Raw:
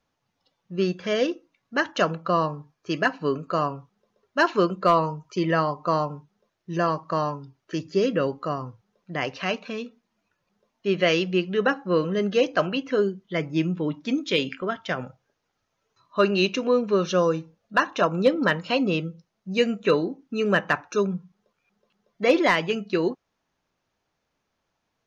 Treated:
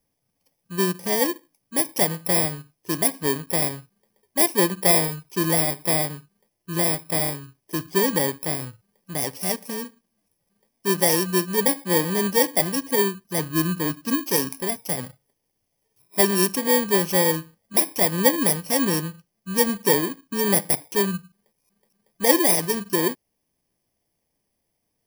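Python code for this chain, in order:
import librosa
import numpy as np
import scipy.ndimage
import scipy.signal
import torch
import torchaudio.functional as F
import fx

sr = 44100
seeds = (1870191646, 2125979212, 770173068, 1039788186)

y = fx.bit_reversed(x, sr, seeds[0], block=32)
y = y * 10.0 ** (1.5 / 20.0)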